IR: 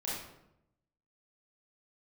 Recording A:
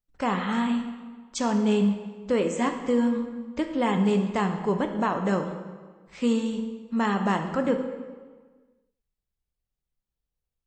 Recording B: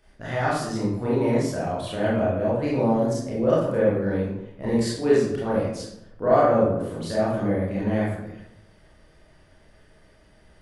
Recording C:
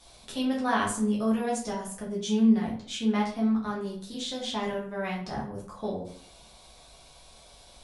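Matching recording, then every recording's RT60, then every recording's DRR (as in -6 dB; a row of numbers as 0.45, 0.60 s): B; 1.5, 0.85, 0.55 s; 5.5, -8.0, -5.0 dB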